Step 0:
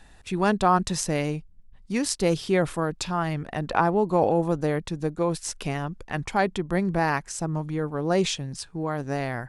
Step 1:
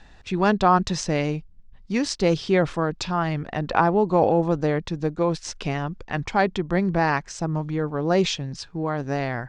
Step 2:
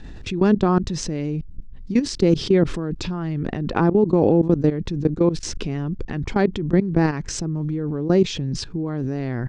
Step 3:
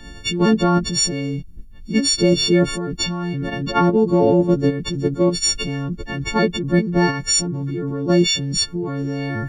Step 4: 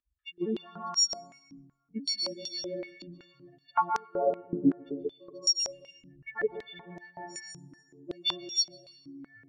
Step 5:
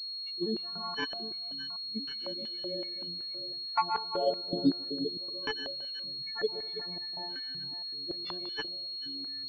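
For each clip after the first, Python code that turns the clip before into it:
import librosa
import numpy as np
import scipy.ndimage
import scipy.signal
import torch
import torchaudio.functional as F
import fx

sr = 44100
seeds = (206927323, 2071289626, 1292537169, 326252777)

y1 = scipy.signal.sosfilt(scipy.signal.butter(4, 6200.0, 'lowpass', fs=sr, output='sos'), x)
y1 = F.gain(torch.from_numpy(y1), 2.5).numpy()
y2 = fx.level_steps(y1, sr, step_db=21)
y2 = fx.low_shelf_res(y2, sr, hz=500.0, db=9.5, q=1.5)
y2 = fx.env_flatten(y2, sr, amount_pct=50)
y2 = F.gain(torch.from_numpy(y2), -3.5).numpy()
y3 = fx.freq_snap(y2, sr, grid_st=4)
y3 = F.gain(torch.from_numpy(y3), 1.5).numpy()
y4 = fx.bin_expand(y3, sr, power=3.0)
y4 = fx.rev_plate(y4, sr, seeds[0], rt60_s=1.3, hf_ratio=0.65, predelay_ms=115, drr_db=1.5)
y4 = fx.filter_held_bandpass(y4, sr, hz=5.3, low_hz=260.0, high_hz=5900.0)
y5 = fx.reverse_delay(y4, sr, ms=441, wet_db=-12.0)
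y5 = fx.buffer_glitch(y5, sr, at_s=(8.18,), block=1024, repeats=2)
y5 = fx.pwm(y5, sr, carrier_hz=4300.0)
y5 = F.gain(torch.from_numpy(y5), -2.0).numpy()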